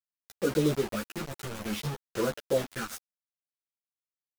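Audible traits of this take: phasing stages 4, 0.58 Hz, lowest notch 480–2900 Hz; a quantiser's noise floor 6-bit, dither none; a shimmering, thickened sound

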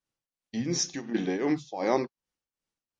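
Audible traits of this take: tremolo triangle 2.7 Hz, depth 80%; MP3

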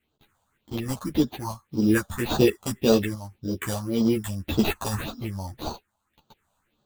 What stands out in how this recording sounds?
aliases and images of a low sample rate 5.3 kHz, jitter 0%; phasing stages 4, 1.8 Hz, lowest notch 330–2100 Hz; random-step tremolo; a shimmering, thickened sound

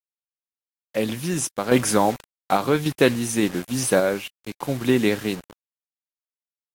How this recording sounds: a quantiser's noise floor 6-bit, dither none; random-step tremolo; Vorbis

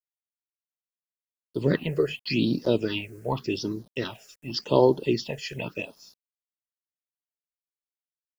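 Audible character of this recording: a quantiser's noise floor 10-bit, dither none; phasing stages 6, 0.87 Hz, lowest notch 240–2700 Hz

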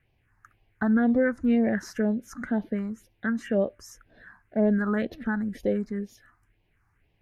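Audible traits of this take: phasing stages 4, 2 Hz, lowest notch 520–1400 Hz

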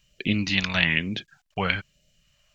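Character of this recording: phasing stages 2, 1.1 Hz, lowest notch 330–1000 Hz

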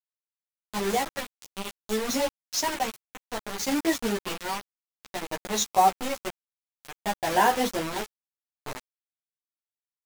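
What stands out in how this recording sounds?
tremolo triangle 0.57 Hz, depth 95%; a quantiser's noise floor 6-bit, dither none; a shimmering, thickened sound

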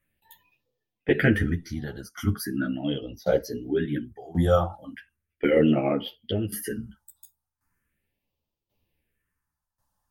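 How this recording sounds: phasing stages 4, 0.38 Hz, lowest notch 380–1700 Hz; tremolo saw down 0.92 Hz, depth 85%; a shimmering, thickened sound

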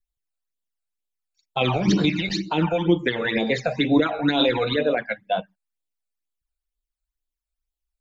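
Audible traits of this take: phasing stages 12, 2.1 Hz, lowest notch 310–2000 Hz

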